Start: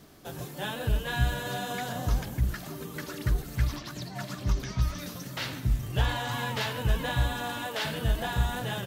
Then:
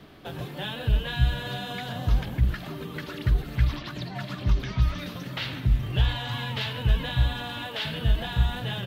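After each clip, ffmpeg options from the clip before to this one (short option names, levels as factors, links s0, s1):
-filter_complex "[0:a]highshelf=f=4700:t=q:w=1.5:g=-12,acrossover=split=180|3000[s0][s1][s2];[s1]acompressor=threshold=0.0112:ratio=6[s3];[s0][s3][s2]amix=inputs=3:normalize=0,volume=1.68"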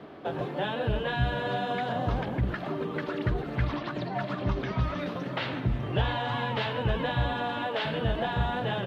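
-af "bandpass=f=580:t=q:w=0.71:csg=0,volume=2.51"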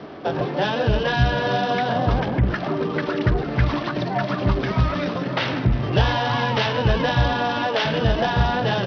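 -af "volume=2.66" -ar 44100 -c:a sbc -b:a 64k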